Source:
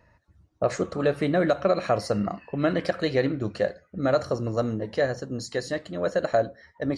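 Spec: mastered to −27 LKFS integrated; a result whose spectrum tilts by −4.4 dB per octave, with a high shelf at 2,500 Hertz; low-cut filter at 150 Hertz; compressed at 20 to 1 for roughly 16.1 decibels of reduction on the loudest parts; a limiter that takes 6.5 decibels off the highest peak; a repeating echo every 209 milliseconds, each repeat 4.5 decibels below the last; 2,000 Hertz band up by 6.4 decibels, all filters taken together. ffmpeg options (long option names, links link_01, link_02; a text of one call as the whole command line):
ffmpeg -i in.wav -af "highpass=150,equalizer=frequency=2000:width_type=o:gain=5,highshelf=frequency=2500:gain=7,acompressor=threshold=-32dB:ratio=20,alimiter=level_in=2.5dB:limit=-24dB:level=0:latency=1,volume=-2.5dB,aecho=1:1:209|418|627|836|1045|1254|1463|1672|1881:0.596|0.357|0.214|0.129|0.0772|0.0463|0.0278|0.0167|0.01,volume=10dB" out.wav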